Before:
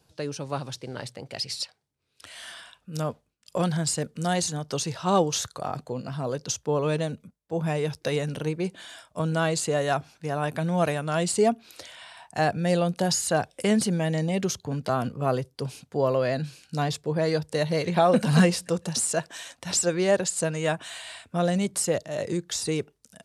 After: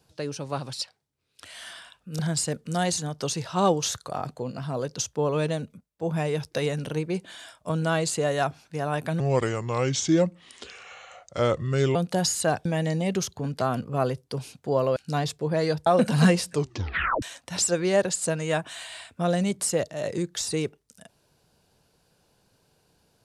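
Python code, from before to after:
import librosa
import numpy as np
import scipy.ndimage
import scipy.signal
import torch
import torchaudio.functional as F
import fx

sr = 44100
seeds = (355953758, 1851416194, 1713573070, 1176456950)

y = fx.edit(x, sr, fx.cut(start_s=0.73, length_s=0.81),
    fx.cut(start_s=3.0, length_s=0.69),
    fx.speed_span(start_s=10.7, length_s=2.12, speed=0.77),
    fx.cut(start_s=13.52, length_s=0.41),
    fx.cut(start_s=16.24, length_s=0.37),
    fx.cut(start_s=17.51, length_s=0.5),
    fx.tape_stop(start_s=18.64, length_s=0.73), tone=tone)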